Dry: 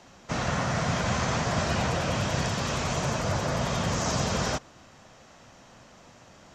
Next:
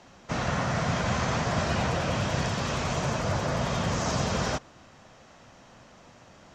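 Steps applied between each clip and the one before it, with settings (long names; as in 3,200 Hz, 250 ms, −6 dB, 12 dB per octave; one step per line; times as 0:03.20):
high-shelf EQ 8,100 Hz −8.5 dB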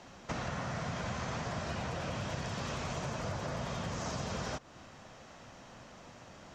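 downward compressor 6 to 1, threshold −35 dBFS, peak gain reduction 12 dB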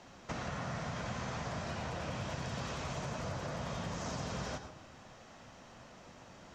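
convolution reverb RT60 0.60 s, pre-delay 91 ms, DRR 9 dB
level −2.5 dB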